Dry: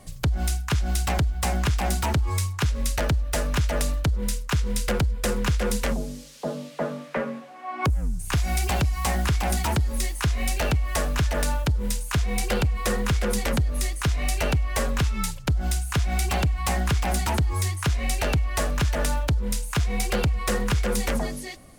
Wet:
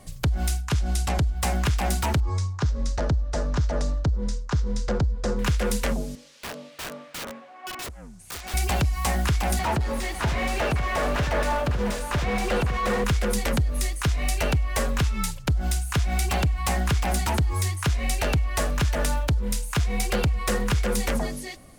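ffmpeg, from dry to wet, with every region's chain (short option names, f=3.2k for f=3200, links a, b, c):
-filter_complex "[0:a]asettb=1/sr,asplit=3[a][b][c];[a]atrim=end=0.604[d];[b]atrim=start=0.6:end=1.37,asetpts=PTS-STARTPTS,afade=t=in:d=0.004:c=qsin,afade=t=out:st=0.766:d=0.004:c=qsin,lowpass=11k,equalizer=f=1.9k:w=0.66:g=-3.5[e];[c]atrim=start=1.366[f];[d][e]acrossfade=d=0.004:c1=hsin:c2=qsin[g];[g][f]acrossfade=d=0.004:c1=qsin:c2=hsin,asettb=1/sr,asplit=3[h][i][j];[h]atrim=end=2.204[k];[i]atrim=start=2.2:end=5.39,asetpts=PTS-STARTPTS,afade=t=in:d=0.004:c=qsin,afade=t=out:st=3.186:d=0.004:c=qsin,lowpass=f=6.2k:w=0.5412,lowpass=f=6.2k:w=1.3066,equalizer=f=2.6k:t=o:w=1.3:g=-12.5[l];[j]atrim=start=5.386[m];[k][l]acrossfade=d=0.004:c1=hsin:c2=qsin[n];[n][m]acrossfade=d=0.004:c1=qsin:c2=hsin,asettb=1/sr,asplit=3[o][p][q];[o]atrim=end=6.154[r];[p]atrim=start=6.15:end=8.54,asetpts=PTS-STARTPTS,afade=t=in:d=0.004:c=qsin,afade=t=out:st=2.386:d=0.004:c=qsin,highpass=f=550:p=1,aemphasis=mode=reproduction:type=50fm,aeval=exprs='(mod(28.2*val(0)+1,2)-1)/28.2':c=same[s];[q]atrim=start=8.536[t];[r][s]acrossfade=d=0.004:c1=hsin:c2=qsin[u];[u][t]acrossfade=d=0.004:c1=qsin:c2=hsin,asettb=1/sr,asplit=3[v][w][x];[v]atrim=end=9.594[y];[w]atrim=start=9.59:end=13.04,asetpts=PTS-STARTPTS,afade=t=in:d=0.004:c=qsin,afade=t=out:st=3.446:d=0.004:c=qsin,asplit=2[z][aa];[aa]highpass=f=720:p=1,volume=25dB,asoftclip=type=tanh:threshold=-16.5dB[ab];[z][ab]amix=inputs=2:normalize=0,lowpass=f=1.2k:p=1,volume=-6dB,aecho=1:1:552:0.355,atrim=end_sample=152145[ac];[x]atrim=start=13.036[ad];[y][ac]acrossfade=d=0.004:c1=hsin:c2=qsin[ae];[ae][ad]acrossfade=d=0.004:c1=qsin:c2=hsin"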